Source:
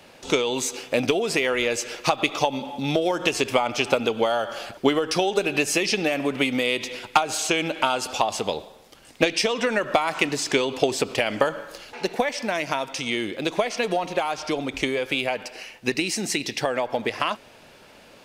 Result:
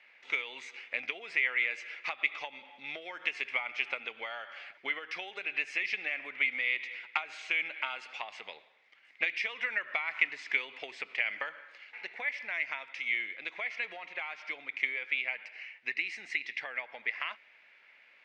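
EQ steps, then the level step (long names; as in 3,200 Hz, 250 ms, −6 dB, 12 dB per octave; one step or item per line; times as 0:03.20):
resonant band-pass 2,100 Hz, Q 5.9
high-frequency loss of the air 86 metres
+2.5 dB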